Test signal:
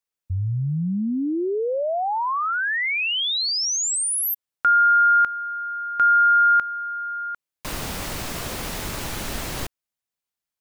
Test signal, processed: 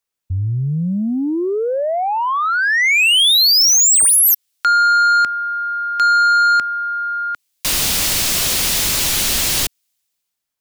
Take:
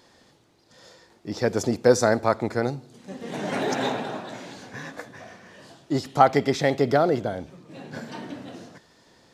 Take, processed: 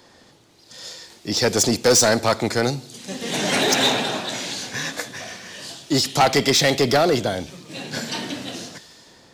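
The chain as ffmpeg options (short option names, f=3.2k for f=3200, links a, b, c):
-filter_complex "[0:a]acrossover=split=240|2600[a][b][c];[c]dynaudnorm=f=150:g=9:m=14dB[d];[a][b][d]amix=inputs=3:normalize=0,asoftclip=type=tanh:threshold=-16dB,volume=5.5dB"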